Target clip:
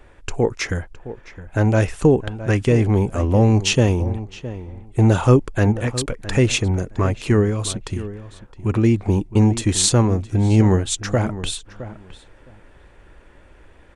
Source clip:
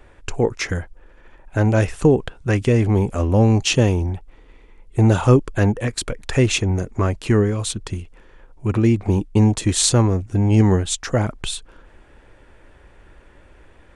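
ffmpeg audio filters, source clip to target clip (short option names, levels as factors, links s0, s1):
-filter_complex "[0:a]asplit=2[s0][s1];[s1]adelay=664,lowpass=f=2100:p=1,volume=0.2,asplit=2[s2][s3];[s3]adelay=664,lowpass=f=2100:p=1,volume=0.16[s4];[s0][s2][s4]amix=inputs=3:normalize=0"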